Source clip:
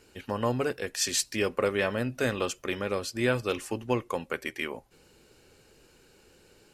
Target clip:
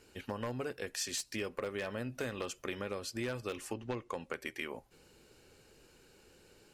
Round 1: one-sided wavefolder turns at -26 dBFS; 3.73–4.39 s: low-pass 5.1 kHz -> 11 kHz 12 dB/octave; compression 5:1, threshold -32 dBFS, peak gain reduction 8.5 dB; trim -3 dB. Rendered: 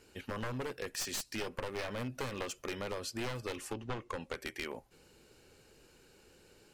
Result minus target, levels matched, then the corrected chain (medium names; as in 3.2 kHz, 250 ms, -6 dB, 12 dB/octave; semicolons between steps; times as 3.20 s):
one-sided wavefolder: distortion +16 dB
one-sided wavefolder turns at -17.5 dBFS; 3.73–4.39 s: low-pass 5.1 kHz -> 11 kHz 12 dB/octave; compression 5:1, threshold -32 dBFS, peak gain reduction 9.5 dB; trim -3 dB